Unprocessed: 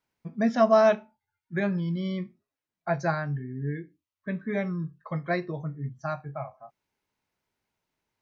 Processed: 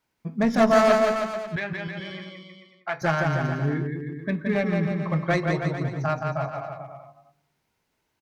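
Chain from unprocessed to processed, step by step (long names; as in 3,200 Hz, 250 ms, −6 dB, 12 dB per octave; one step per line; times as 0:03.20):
stylus tracing distortion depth 0.079 ms
in parallel at −1.5 dB: brickwall limiter −19 dBFS, peak gain reduction 10.5 dB
on the sum: asymmetric clip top −20.5 dBFS
0:01.56–0:03.02: resonant band-pass 2,100 Hz, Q 0.68
bouncing-ball delay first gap 170 ms, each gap 0.85×, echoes 5
on a send at −17.5 dB: convolution reverb RT60 0.95 s, pre-delay 3 ms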